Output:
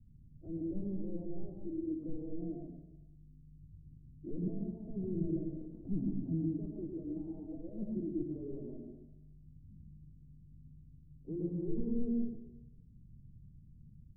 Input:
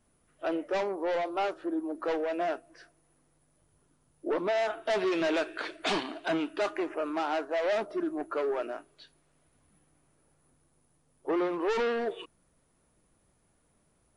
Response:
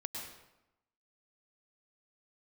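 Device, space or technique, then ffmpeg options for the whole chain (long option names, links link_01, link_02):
club heard from the street: -filter_complex "[0:a]alimiter=level_in=2dB:limit=-24dB:level=0:latency=1,volume=-2dB,lowpass=frequency=170:width=0.5412,lowpass=frequency=170:width=1.3066[link_01];[1:a]atrim=start_sample=2205[link_02];[link_01][link_02]afir=irnorm=-1:irlink=0,volume=18dB"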